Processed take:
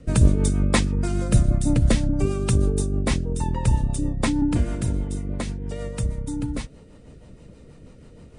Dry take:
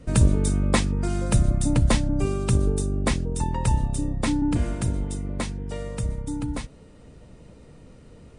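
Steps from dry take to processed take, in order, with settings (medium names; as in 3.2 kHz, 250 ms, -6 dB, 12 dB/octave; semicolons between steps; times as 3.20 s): rotary cabinet horn 6.3 Hz; trim +3 dB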